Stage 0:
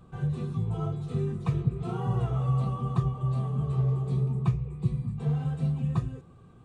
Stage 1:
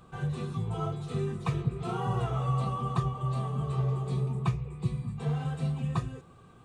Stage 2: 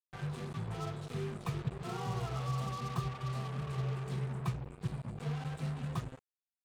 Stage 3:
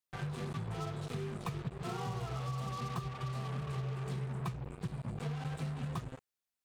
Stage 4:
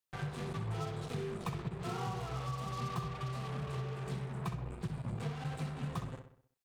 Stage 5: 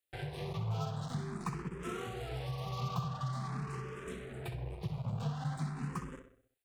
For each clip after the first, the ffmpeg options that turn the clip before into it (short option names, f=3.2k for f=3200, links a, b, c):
-af "lowshelf=f=460:g=-10,volume=6dB"
-af "acrusher=bits=5:mix=0:aa=0.5,volume=-7dB"
-af "acompressor=threshold=-39dB:ratio=6,volume=4dB"
-filter_complex "[0:a]asplit=2[a][b];[b]adelay=64,lowpass=f=3.8k:p=1,volume=-7.5dB,asplit=2[c][d];[d]adelay=64,lowpass=f=3.8k:p=1,volume=0.49,asplit=2[e][f];[f]adelay=64,lowpass=f=3.8k:p=1,volume=0.49,asplit=2[g][h];[h]adelay=64,lowpass=f=3.8k:p=1,volume=0.49,asplit=2[i][j];[j]adelay=64,lowpass=f=3.8k:p=1,volume=0.49,asplit=2[k][l];[l]adelay=64,lowpass=f=3.8k:p=1,volume=0.49[m];[a][c][e][g][i][k][m]amix=inputs=7:normalize=0"
-filter_complex "[0:a]asplit=2[a][b];[b]afreqshift=0.46[c];[a][c]amix=inputs=2:normalize=1,volume=3dB"